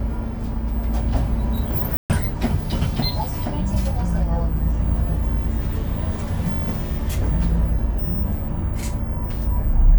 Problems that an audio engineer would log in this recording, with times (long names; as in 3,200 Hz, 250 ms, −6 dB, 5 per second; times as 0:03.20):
0:01.97–0:02.10: drop-out 128 ms